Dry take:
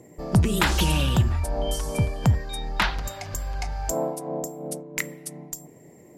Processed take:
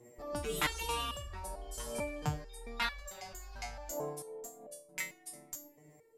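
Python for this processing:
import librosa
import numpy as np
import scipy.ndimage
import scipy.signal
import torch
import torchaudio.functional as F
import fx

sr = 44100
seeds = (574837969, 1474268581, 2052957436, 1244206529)

y = fx.peak_eq(x, sr, hz=160.0, db=-8.0, octaves=1.4)
y = fx.resonator_held(y, sr, hz=4.5, low_hz=120.0, high_hz=570.0)
y = y * librosa.db_to_amplitude(3.5)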